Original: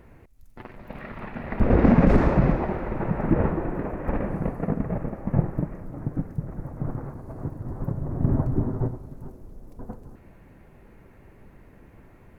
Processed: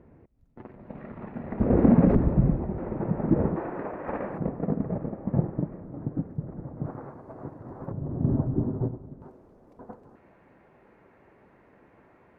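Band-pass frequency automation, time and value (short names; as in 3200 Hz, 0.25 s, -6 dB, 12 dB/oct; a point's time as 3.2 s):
band-pass, Q 0.52
260 Hz
from 2.15 s 110 Hz
from 2.78 s 260 Hz
from 3.56 s 930 Hz
from 4.38 s 310 Hz
from 6.86 s 770 Hz
from 7.92 s 260 Hz
from 9.22 s 880 Hz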